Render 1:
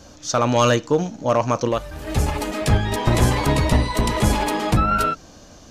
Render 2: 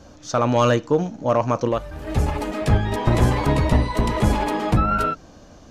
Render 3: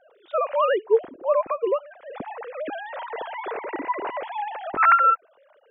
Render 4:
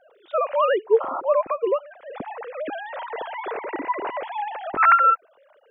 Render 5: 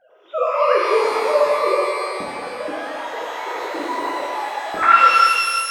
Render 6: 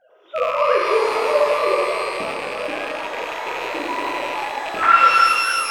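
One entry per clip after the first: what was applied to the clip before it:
treble shelf 2.9 kHz -9.5 dB
formants replaced by sine waves; trim -4.5 dB
painted sound noise, 1.00–1.21 s, 520–1400 Hz -29 dBFS; trim +1 dB
pitch-shifted reverb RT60 2.1 s, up +12 st, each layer -8 dB, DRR -5.5 dB; trim -3 dB
rattle on loud lows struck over -45 dBFS, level -17 dBFS; modulated delay 279 ms, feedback 80%, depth 137 cents, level -14 dB; trim -1 dB

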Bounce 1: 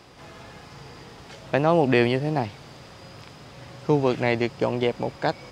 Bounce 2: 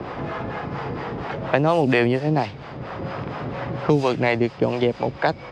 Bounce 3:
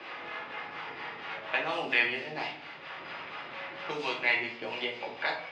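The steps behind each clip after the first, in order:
level-controlled noise filter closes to 1.4 kHz, open at -15 dBFS; harmonic tremolo 4.3 Hz, depth 70%, crossover 500 Hz; three bands compressed up and down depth 70%; trim +6 dB
band-pass filter 2.7 kHz, Q 1.5; reverberation RT60 0.65 s, pre-delay 3 ms, DRR -3.5 dB; tape noise reduction on one side only encoder only; trim -4 dB

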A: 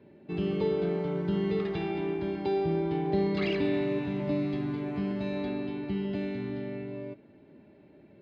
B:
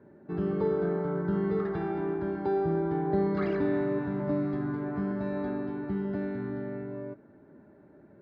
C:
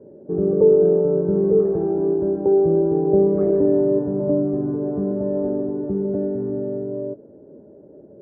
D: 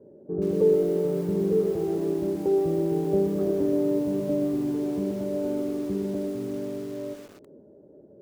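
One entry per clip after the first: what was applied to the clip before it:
resonant high shelf 2 kHz -10 dB, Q 3
resonant low-pass 500 Hz, resonance Q 4.9; trim +5 dB
bit-crushed delay 126 ms, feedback 55%, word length 6-bit, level -8 dB; trim -6.5 dB

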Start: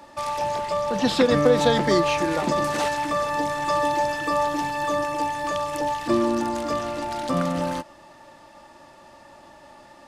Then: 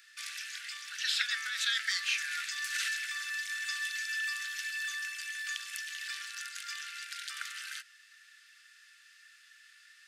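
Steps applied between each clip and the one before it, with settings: steep high-pass 1.4 kHz 96 dB/octave; trim -2 dB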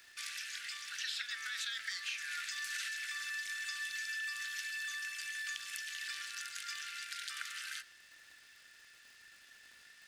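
compression, threshold -36 dBFS, peak gain reduction 10.5 dB; crackle 320 per s -51 dBFS; on a send at -17 dB: reverberation RT60 1.2 s, pre-delay 3 ms; on the sum: trim -1 dB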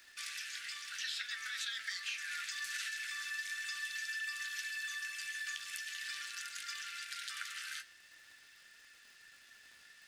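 flange 0.45 Hz, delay 3.2 ms, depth 9.9 ms, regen -43%; trim +3.5 dB

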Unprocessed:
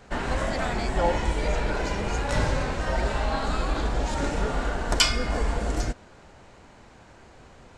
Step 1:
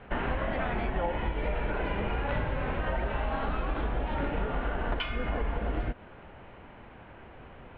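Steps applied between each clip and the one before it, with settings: compression, threshold -28 dBFS, peak gain reduction 12.5 dB; steep low-pass 3.2 kHz 48 dB/octave; trim +1.5 dB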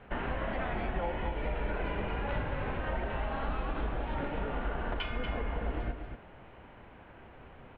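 delay 237 ms -7.5 dB; trim -4 dB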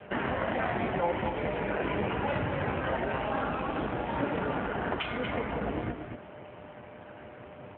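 whistle 600 Hz -56 dBFS; trim +7.5 dB; AMR-NB 7.4 kbps 8 kHz

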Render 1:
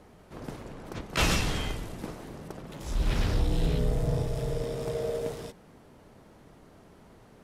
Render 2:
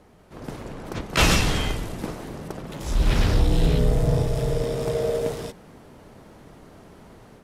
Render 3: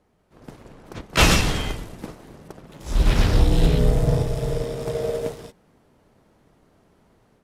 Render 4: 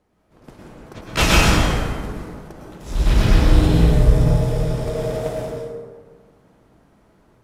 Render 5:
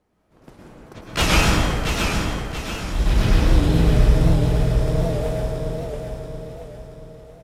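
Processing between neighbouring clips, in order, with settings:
level rider gain up to 7 dB
in parallel at -6 dB: crossover distortion -39.5 dBFS; on the sum: upward expansion 1.5:1, over -35 dBFS
plate-style reverb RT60 1.7 s, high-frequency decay 0.45×, pre-delay 95 ms, DRR -4 dB; trim -2 dB
feedback delay 679 ms, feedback 45%, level -5.5 dB; warped record 78 rpm, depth 100 cents; trim -2.5 dB

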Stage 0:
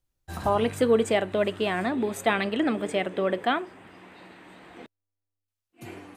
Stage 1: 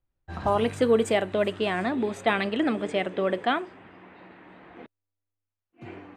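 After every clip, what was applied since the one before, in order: level-controlled noise filter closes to 2.1 kHz, open at -19.5 dBFS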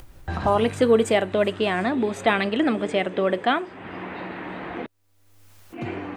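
upward compressor, threshold -25 dBFS; trim +3.5 dB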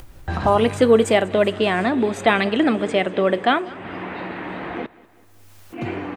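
feedback delay 193 ms, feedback 53%, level -21.5 dB; trim +3.5 dB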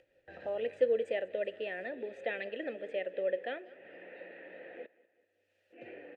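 vowel filter e; trim -7.5 dB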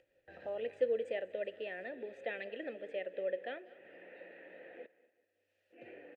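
delay 235 ms -22 dB; trim -4 dB

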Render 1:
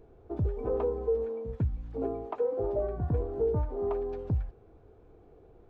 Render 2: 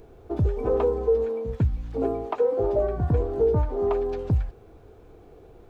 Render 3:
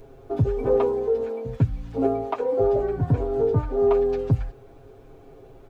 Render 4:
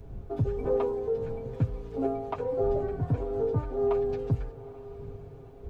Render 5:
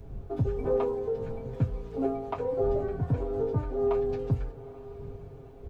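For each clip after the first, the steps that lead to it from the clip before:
treble shelf 2.3 kHz +10 dB; trim +6.5 dB
comb 7.4 ms, depth 86%
wind noise 94 Hz -37 dBFS; echo that smears into a reverb 900 ms, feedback 41%, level -16 dB; trim -6.5 dB
doubling 23 ms -10.5 dB

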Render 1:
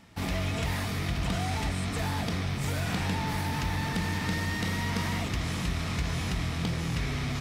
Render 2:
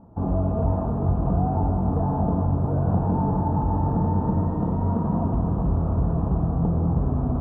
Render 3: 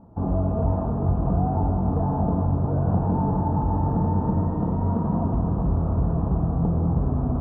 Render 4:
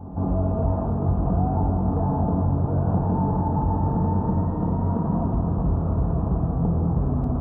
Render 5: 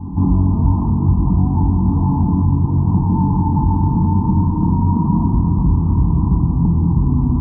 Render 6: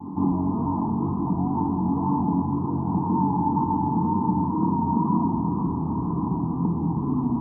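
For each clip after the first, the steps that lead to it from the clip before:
inverse Chebyshev low-pass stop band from 1.9 kHz, stop band 40 dB; on a send at -3.5 dB: reverberation RT60 3.5 s, pre-delay 78 ms; on the sum: trim +7.5 dB
distance through air 72 m
reverse echo 166 ms -12.5 dB
FFT filter 320 Hz 0 dB, 600 Hz -29 dB, 970 Hz +3 dB, 1.4 kHz -23 dB; gain riding; trim +8 dB
high-pass 270 Hz 12 dB/octave; vibrato 2 Hz 40 cents

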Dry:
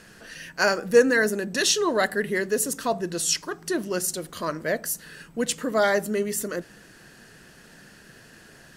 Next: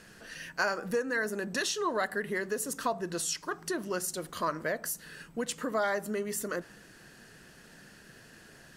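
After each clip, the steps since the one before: compression 4:1, threshold -27 dBFS, peak gain reduction 13.5 dB; dynamic bell 1.1 kHz, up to +7 dB, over -46 dBFS, Q 1.1; trim -4 dB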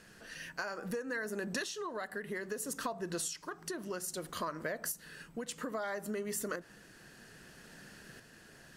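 compression, threshold -34 dBFS, peak gain reduction 9.5 dB; tremolo saw up 0.61 Hz, depth 45%; trim +1 dB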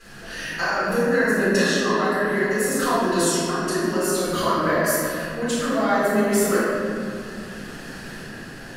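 reverberation RT60 2.6 s, pre-delay 4 ms, DRR -15.5 dB; trim -3.5 dB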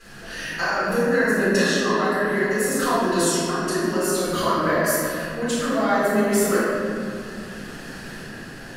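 no audible change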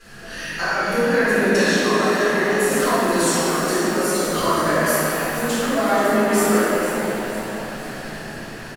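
frequency-shifting echo 480 ms, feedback 48%, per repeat +110 Hz, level -11 dB; pitch-shifted reverb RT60 2.5 s, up +7 st, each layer -8 dB, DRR 2.5 dB

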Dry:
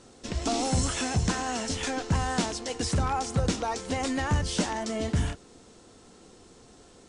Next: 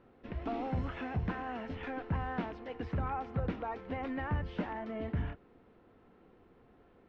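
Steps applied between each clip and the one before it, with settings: low-pass 2.4 kHz 24 dB/octave; trim -8 dB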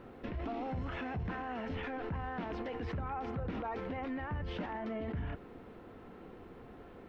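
in parallel at -2.5 dB: compressor with a negative ratio -46 dBFS; on the sum: peak limiter -33 dBFS, peak gain reduction 8 dB; trim +1.5 dB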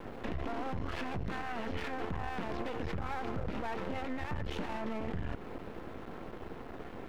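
compression, threshold -41 dBFS, peak gain reduction 7 dB; half-wave rectifier; trim +11 dB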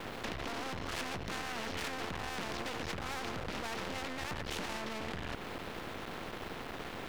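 spectrum-flattening compressor 2:1; trim +1 dB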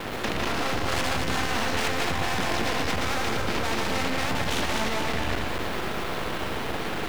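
backward echo that repeats 114 ms, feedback 65%, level -2.5 dB; in parallel at -12 dB: bit crusher 7-bit; on the sum: trim +7.5 dB

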